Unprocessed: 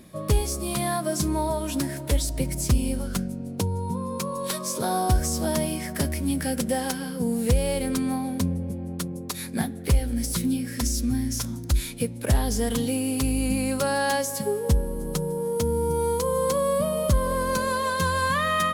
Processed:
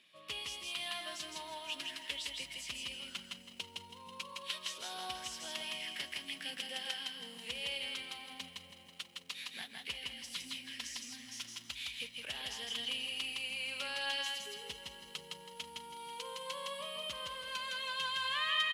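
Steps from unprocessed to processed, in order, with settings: band-pass filter 2.9 kHz, Q 4.7; delay 162 ms -3 dB; bit-crushed delay 163 ms, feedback 80%, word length 11-bit, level -13.5 dB; trim +3 dB

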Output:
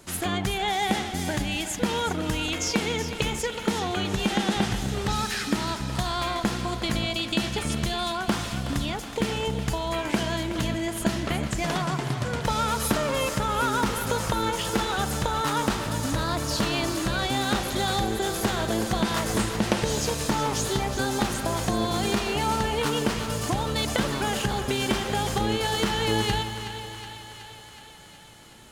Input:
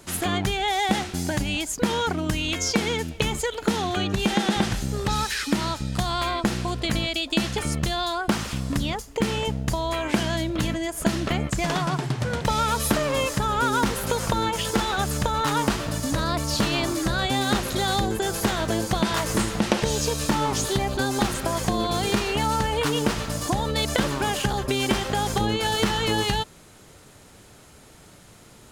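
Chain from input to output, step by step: thinning echo 371 ms, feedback 69%, level -10.5 dB; on a send at -11 dB: reverberation RT60 3.3 s, pre-delay 36 ms; on the sum: trim -2.5 dB

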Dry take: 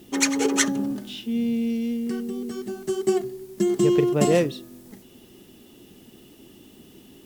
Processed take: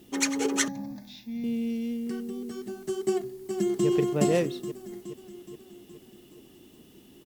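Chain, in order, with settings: 0.68–1.44 s: static phaser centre 2 kHz, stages 8; 3.03–3.87 s: echo throw 420 ms, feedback 60%, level -6 dB; trim -5 dB

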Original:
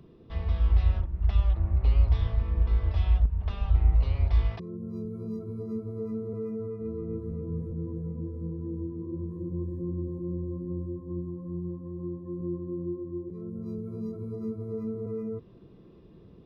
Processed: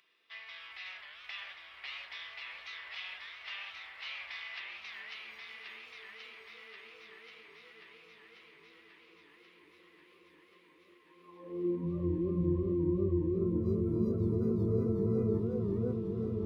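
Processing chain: echo that smears into a reverb 631 ms, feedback 79%, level -15.5 dB; high-pass sweep 2.1 kHz -> 61 Hz, 11.09–12.18 s; modulated delay 541 ms, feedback 76%, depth 197 cents, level -3 dB

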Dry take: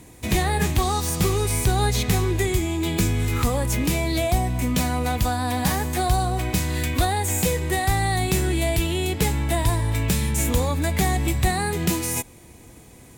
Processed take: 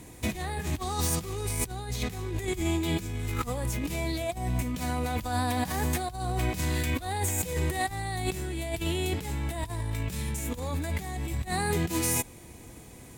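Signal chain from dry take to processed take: compressor with a negative ratio -25 dBFS, ratio -0.5; trim -4.5 dB

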